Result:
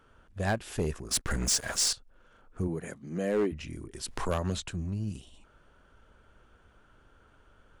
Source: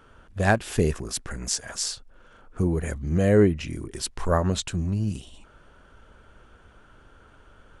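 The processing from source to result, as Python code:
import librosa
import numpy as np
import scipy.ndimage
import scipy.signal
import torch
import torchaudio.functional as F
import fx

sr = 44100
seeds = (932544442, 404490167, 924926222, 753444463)

y = fx.leveller(x, sr, passes=3, at=(1.11, 1.93))
y = fx.highpass(y, sr, hz=fx.line((2.67, 110.0), (3.51, 240.0)), slope=24, at=(2.67, 3.51), fade=0.02)
y = np.clip(y, -10.0 ** (-14.5 / 20.0), 10.0 ** (-14.5 / 20.0))
y = fx.band_squash(y, sr, depth_pct=70, at=(4.08, 4.71))
y = y * 10.0 ** (-7.5 / 20.0)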